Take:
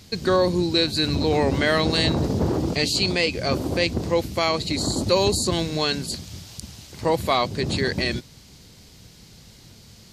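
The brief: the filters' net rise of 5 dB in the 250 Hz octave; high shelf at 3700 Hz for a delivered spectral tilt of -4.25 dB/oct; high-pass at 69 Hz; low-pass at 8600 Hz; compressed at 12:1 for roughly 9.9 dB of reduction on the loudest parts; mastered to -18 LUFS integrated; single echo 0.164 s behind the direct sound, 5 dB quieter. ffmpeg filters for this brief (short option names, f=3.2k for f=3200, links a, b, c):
-af "highpass=69,lowpass=8.6k,equalizer=f=250:t=o:g=7,highshelf=f=3.7k:g=6.5,acompressor=threshold=-23dB:ratio=12,aecho=1:1:164:0.562,volume=8.5dB"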